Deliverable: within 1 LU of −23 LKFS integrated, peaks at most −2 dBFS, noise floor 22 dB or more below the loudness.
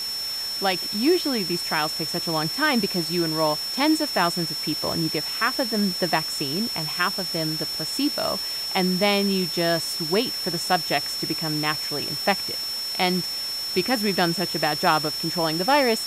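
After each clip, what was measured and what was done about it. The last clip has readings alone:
interfering tone 5,400 Hz; level of the tone −27 dBFS; background noise floor −29 dBFS; target noise floor −45 dBFS; integrated loudness −23.0 LKFS; sample peak −5.5 dBFS; target loudness −23.0 LKFS
→ notch filter 5,400 Hz, Q 30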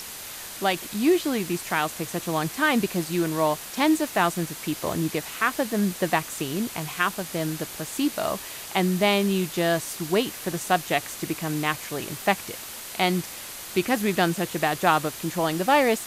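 interfering tone none found; background noise floor −38 dBFS; target noise floor −48 dBFS
→ broadband denoise 10 dB, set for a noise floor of −38 dBFS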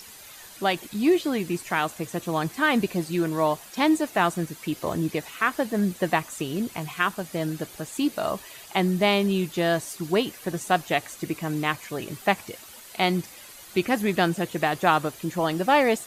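background noise floor −46 dBFS; target noise floor −48 dBFS
→ broadband denoise 6 dB, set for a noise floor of −46 dBFS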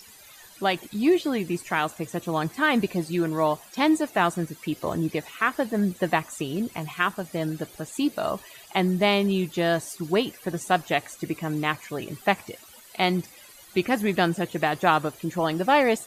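background noise floor −49 dBFS; integrated loudness −25.5 LKFS; sample peak −6.5 dBFS; target loudness −23.0 LKFS
→ level +2.5 dB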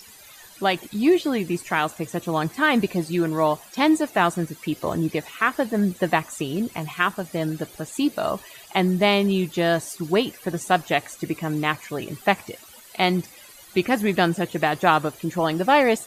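integrated loudness −23.0 LKFS; sample peak −4.0 dBFS; background noise floor −47 dBFS

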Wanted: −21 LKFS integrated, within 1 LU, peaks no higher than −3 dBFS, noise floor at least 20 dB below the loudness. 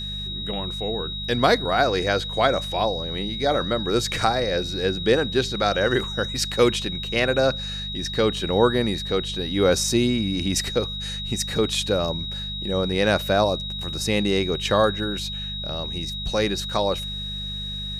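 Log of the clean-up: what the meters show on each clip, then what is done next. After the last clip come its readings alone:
mains hum 50 Hz; hum harmonics up to 200 Hz; level of the hum −32 dBFS; interfering tone 3,800 Hz; level of the tone −30 dBFS; integrated loudness −23.0 LKFS; sample peak −4.5 dBFS; target loudness −21.0 LKFS
→ hum removal 50 Hz, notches 4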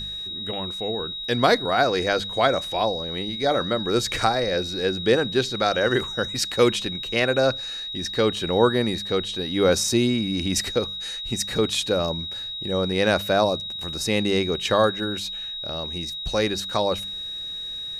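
mains hum none found; interfering tone 3,800 Hz; level of the tone −30 dBFS
→ notch filter 3,800 Hz, Q 30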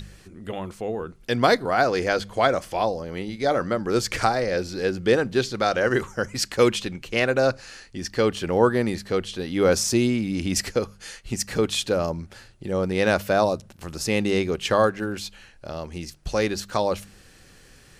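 interfering tone none found; integrated loudness −24.0 LKFS; sample peak −5.0 dBFS; target loudness −21.0 LKFS
→ level +3 dB
brickwall limiter −3 dBFS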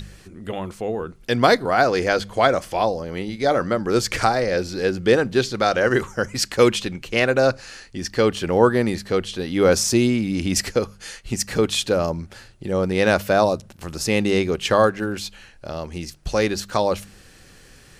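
integrated loudness −21.0 LKFS; sample peak −3.0 dBFS; background noise floor −49 dBFS

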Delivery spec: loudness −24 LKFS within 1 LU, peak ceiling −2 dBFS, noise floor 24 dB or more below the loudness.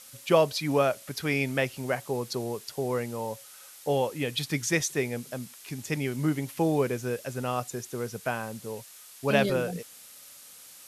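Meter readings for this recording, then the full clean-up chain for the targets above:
background noise floor −50 dBFS; target noise floor −53 dBFS; integrated loudness −29.0 LKFS; sample peak −7.5 dBFS; target loudness −24.0 LKFS
→ broadband denoise 6 dB, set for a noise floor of −50 dBFS
level +5 dB

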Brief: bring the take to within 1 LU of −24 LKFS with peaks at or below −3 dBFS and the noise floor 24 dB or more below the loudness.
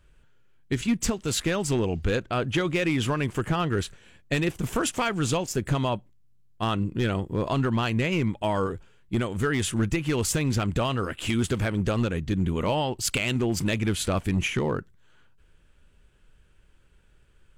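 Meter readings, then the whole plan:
share of clipped samples 0.6%; peaks flattened at −17.0 dBFS; integrated loudness −26.5 LKFS; sample peak −17.0 dBFS; target loudness −24.0 LKFS
→ clipped peaks rebuilt −17 dBFS
level +2.5 dB

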